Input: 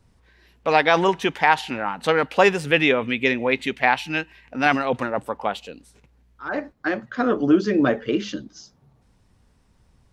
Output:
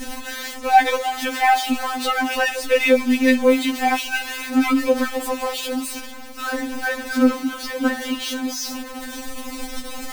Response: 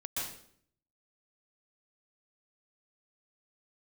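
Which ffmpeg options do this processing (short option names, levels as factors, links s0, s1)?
-af "aeval=exprs='val(0)+0.5*0.0944*sgn(val(0))':c=same,afftfilt=real='re*3.46*eq(mod(b,12),0)':imag='im*3.46*eq(mod(b,12),0)':win_size=2048:overlap=0.75"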